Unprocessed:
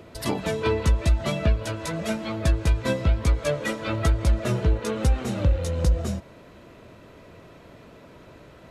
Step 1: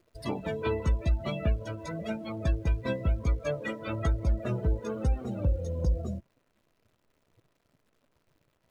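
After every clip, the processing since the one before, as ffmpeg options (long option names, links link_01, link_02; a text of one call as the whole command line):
ffmpeg -i in.wav -af "acrusher=bits=8:dc=4:mix=0:aa=0.000001,afftdn=noise_reduction=19:noise_floor=-32,volume=-6dB" out.wav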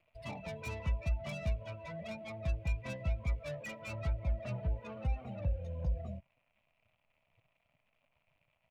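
ffmpeg -i in.wav -filter_complex "[0:a]firequalizer=gain_entry='entry(150,0);entry(370,-14);entry(630,6);entry(1600,-3);entry(2400,14);entry(3900,-4);entry(5800,-13)':delay=0.05:min_phase=1,acrossover=split=350[link_01][link_02];[link_02]asoftclip=type=tanh:threshold=-34.5dB[link_03];[link_01][link_03]amix=inputs=2:normalize=0,volume=-7dB" out.wav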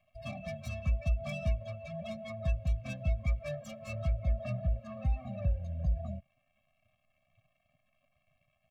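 ffmpeg -i in.wav -af "afftfilt=real='re*eq(mod(floor(b*sr/1024/260),2),0)':imag='im*eq(mod(floor(b*sr/1024/260),2),0)':win_size=1024:overlap=0.75,volume=3.5dB" out.wav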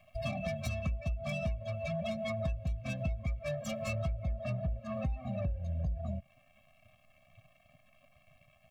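ffmpeg -i in.wav -filter_complex "[0:a]asplit=2[link_01][link_02];[link_02]asoftclip=type=tanh:threshold=-30.5dB,volume=-4.5dB[link_03];[link_01][link_03]amix=inputs=2:normalize=0,acompressor=threshold=-39dB:ratio=6,volume=6.5dB" out.wav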